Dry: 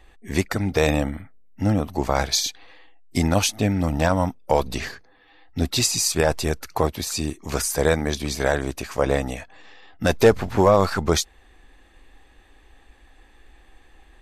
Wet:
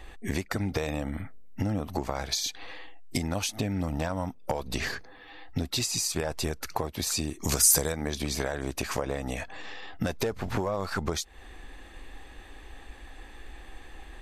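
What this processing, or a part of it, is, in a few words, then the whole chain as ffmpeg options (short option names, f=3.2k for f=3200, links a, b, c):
serial compression, peaks first: -filter_complex "[0:a]acompressor=threshold=-29dB:ratio=6,acompressor=threshold=-34dB:ratio=2.5,asettb=1/sr,asplit=3[a][b][c];[a]atrim=end=7.404[d];[b]atrim=start=7.4:end=7.92,asetpts=PTS-STARTPTS,afade=t=in:d=0.004:c=qsin,afade=t=out:st=0.516:d=0.004:c=qsin,bass=f=250:g=3,treble=f=4k:g=12[e];[c]atrim=start=7.916[f];[d][e]acrossfade=d=0.004:c1=hsin:c2=qsin[g];[g][f]acrossfade=d=0.004:c1=qsin:c2=hsin,volume=6.5dB"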